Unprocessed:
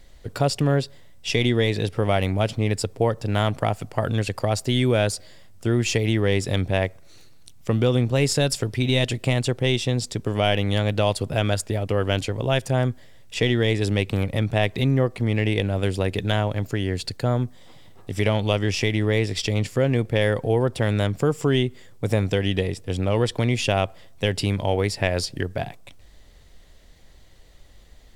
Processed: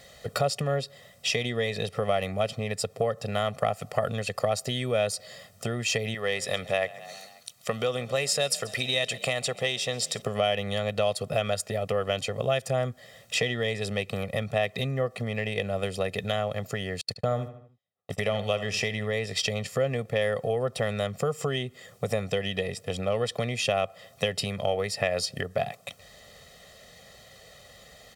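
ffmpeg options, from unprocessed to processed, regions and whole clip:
-filter_complex "[0:a]asettb=1/sr,asplit=3[a][b][c];[a]atrim=end=6.144[d];[b]atrim=start=6.14:end=10.22,asetpts=PTS-STARTPTS,afade=t=in:d=0.004:c=qsin,afade=t=out:st=4.076:d=0.004:c=qsin,lowshelf=f=400:g=-11.5,asplit=5[e][f][g][h][i];[f]adelay=134,afreqshift=33,volume=-22dB[j];[g]adelay=268,afreqshift=66,volume=-26.7dB[k];[h]adelay=402,afreqshift=99,volume=-31.5dB[l];[i]adelay=536,afreqshift=132,volume=-36.2dB[m];[e][j][k][l][m]amix=inputs=5:normalize=0,atrim=end_sample=179928[n];[c]atrim=start=10.216[o];[d][n]acrossfade=d=0.004:c1=hsin:c2=qsin[p];[p][o]acrossfade=d=0.004:c1=qsin:c2=hsin,asettb=1/sr,asplit=3[q][r][s];[q]atrim=end=17.014[t];[r]atrim=start=17.01:end=19.11,asetpts=PTS-STARTPTS,afade=t=in:d=0.004:c=qsin,afade=t=out:st=2.096:d=0.004:c=qsin,bandreject=f=4.6k:w=23,agate=range=-44dB:threshold=-31dB:ratio=16:release=100:detection=peak,asplit=2[u][v];[v]adelay=75,lowpass=f=3.5k:p=1,volume=-13dB,asplit=2[w][x];[x]adelay=75,lowpass=f=3.5k:p=1,volume=0.36,asplit=2[y][z];[z]adelay=75,lowpass=f=3.5k:p=1,volume=0.36,asplit=2[aa][ab];[ab]adelay=75,lowpass=f=3.5k:p=1,volume=0.36[ac];[u][w][y][aa][ac]amix=inputs=5:normalize=0,atrim=end_sample=92610[ad];[s]atrim=start=19.106[ae];[t][ad]acrossfade=d=0.004:c1=hsin:c2=qsin[af];[af][ae]acrossfade=d=0.004:c1=qsin:c2=hsin,acompressor=threshold=-33dB:ratio=3,highpass=180,aecho=1:1:1.6:0.9,volume=5dB"

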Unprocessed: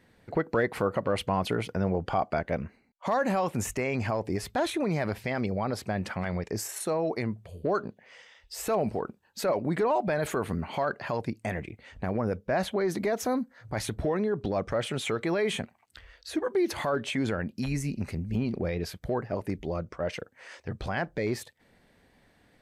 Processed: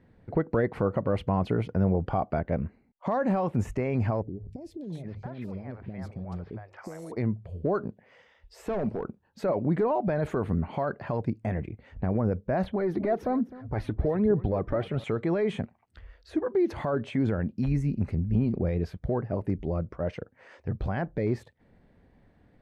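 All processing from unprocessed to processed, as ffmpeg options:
-filter_complex "[0:a]asettb=1/sr,asplit=3[a][b][c];[a]atrim=end=4.224[d];[b]atrim=start=4.22:end=7.12,asetpts=PTS-STARTPTS,afade=t=in:d=0.004:c=qsin,afade=t=out:st=2.896:d=0.004:c=qsin,bandreject=f=50:t=h:w=6,bandreject=f=100:t=h:w=6,bandreject=f=150:t=h:w=6,acompressor=threshold=-36dB:ratio=5:attack=3.2:release=140:knee=1:detection=peak,acrossover=split=560|3200[e][f][g];[g]adelay=260[h];[f]adelay=680[i];[e][i][h]amix=inputs=3:normalize=0,atrim=end_sample=127890[j];[c]atrim=start=7.116[k];[d][j]acrossfade=d=0.004:c1=hsin:c2=qsin[l];[l][k]acrossfade=d=0.004:c1=qsin:c2=hsin,asettb=1/sr,asplit=3[m][n][o];[m]atrim=end=8.544[p];[n]atrim=start=8.54:end=9.04,asetpts=PTS-STARTPTS,afade=t=in:d=0.004:c=qsin,afade=t=out:st=0.496:d=0.004:c=qsin,highpass=130,bandreject=f=750:w=19,asoftclip=type=hard:threshold=-26.5dB[q];[o]atrim=start=9.036[r];[p][q]acrossfade=d=0.004:c1=hsin:c2=qsin[s];[s][r]acrossfade=d=0.004:c1=qsin:c2=hsin,asettb=1/sr,asplit=3[t][u][v];[t]atrim=end=12.644[w];[u]atrim=start=12.64:end=15.04,asetpts=PTS-STARTPTS,afade=t=in:d=0.004:c=qsin,afade=t=out:st=2.396:d=0.004:c=qsin,equalizer=f=7.2k:t=o:w=0.79:g=-13.5,aecho=1:1:258|516:0.133|0.024,atrim=end_sample=105840,aphaser=in_gain=1:out_gain=1:delay=3.5:decay=0.46:speed=1.2:type=triangular[x];[v]atrim=start=15.036[y];[w][x]acrossfade=d=0.004:c1=hsin:c2=qsin[z];[z][y]acrossfade=d=0.004:c1=qsin:c2=hsin,lowpass=f=1k:p=1,lowshelf=f=210:g=7.5"

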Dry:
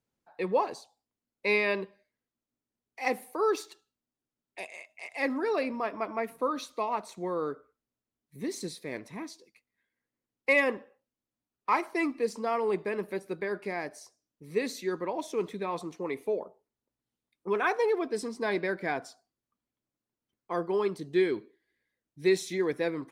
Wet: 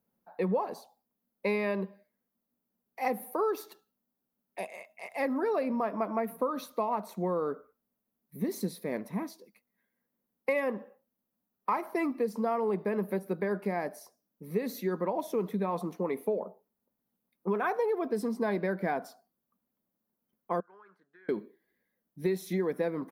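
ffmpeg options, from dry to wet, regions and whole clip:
-filter_complex "[0:a]asettb=1/sr,asplit=3[a][b][c];[a]atrim=end=20.604[d];[b]atrim=start=20.6:end=21.29,asetpts=PTS-STARTPTS,afade=t=in:d=0.004:c=qsin,afade=t=out:st=0.686:d=0.004:c=qsin,bandpass=f=1.5k:t=q:w=11,acompressor=threshold=-54dB:ratio=10:attack=3.2:release=140:knee=1:detection=peak[e];[c]atrim=start=21.286[f];[d][e]acrossfade=d=0.004:c1=hsin:c2=qsin[g];[g][f]acrossfade=d=0.004:c1=qsin:c2=hsin,firequalizer=gain_entry='entry(130,0);entry(190,15);entry(300,4);entry(560,9);entry(2500,-2);entry(5500,-2);entry(7800,-5);entry(12000,14)':delay=0.05:min_phase=1,acompressor=threshold=-24dB:ratio=5,volume=-2.5dB"

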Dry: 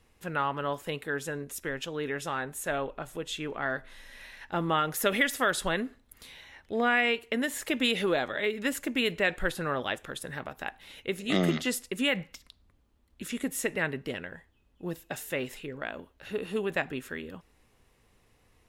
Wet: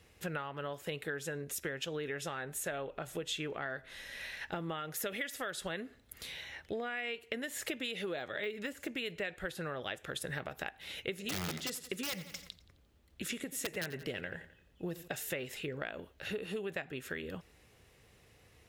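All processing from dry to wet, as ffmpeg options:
-filter_complex "[0:a]asettb=1/sr,asplit=3[a][b][c];[a]atrim=end=8.194[d];[b]atrim=start=8.19:end=8.91,asetpts=PTS-STARTPTS,afade=t=in:d=0.004:c=qsin,afade=t=out:st=0.716:d=0.004:c=qsin,deesser=0.95,highpass=42[e];[c]atrim=start=8.906[f];[d][e]acrossfade=d=0.004:c1=hsin:c2=qsin[g];[g][f]acrossfade=d=0.004:c1=qsin:c2=hsin,asettb=1/sr,asplit=3[h][i][j];[h]atrim=end=11.264[k];[i]atrim=start=11.26:end=15.08,asetpts=PTS-STARTPTS,afade=t=in:d=0.004:c=qsin,afade=t=out:st=3.816:d=0.004:c=qsin,aeval=exprs='(mod(9.44*val(0)+1,2)-1)/9.44':c=same,aecho=1:1:87|174|261|348:0.133|0.0613|0.0282|0.013,atrim=end_sample=168462[l];[j]atrim=start=15.076[m];[k][l]acrossfade=d=0.004:c1=hsin:c2=qsin[n];[n][m]acrossfade=d=0.004:c1=qsin:c2=hsin,highpass=61,acompressor=threshold=-38dB:ratio=12,equalizer=f=250:t=o:w=0.67:g=-6,equalizer=f=1k:t=o:w=0.67:g=-7,equalizer=f=10k:t=o:w=0.67:g=-3,volume=5dB"

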